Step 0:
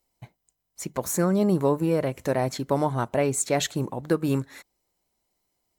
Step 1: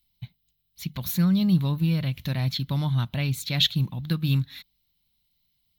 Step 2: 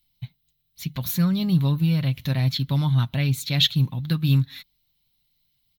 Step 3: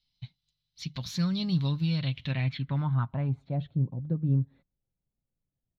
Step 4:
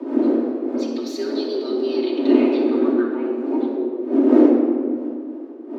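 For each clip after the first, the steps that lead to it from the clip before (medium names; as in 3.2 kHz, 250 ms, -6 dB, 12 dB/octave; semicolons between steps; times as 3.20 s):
FFT filter 170 Hz 0 dB, 420 Hz -26 dB, 1.9 kHz -10 dB, 3.7 kHz +7 dB, 7.9 kHz -23 dB, 14 kHz 0 dB; trim +6.5 dB
comb 7.5 ms, depth 38%; trim +1.5 dB
low-pass sweep 5 kHz -> 500 Hz, 1.85–3.76 s; trim -7 dB
wind noise 160 Hz -25 dBFS; frequency shift +230 Hz; simulated room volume 2900 m³, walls mixed, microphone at 2.7 m; trim -1 dB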